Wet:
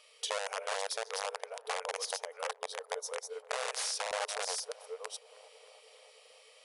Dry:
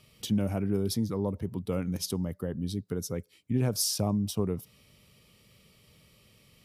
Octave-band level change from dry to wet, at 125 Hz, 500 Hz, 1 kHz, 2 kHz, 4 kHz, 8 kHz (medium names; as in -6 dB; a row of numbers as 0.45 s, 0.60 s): under -40 dB, -4.0 dB, +6.5 dB, +11.0 dB, 0.0 dB, -2.0 dB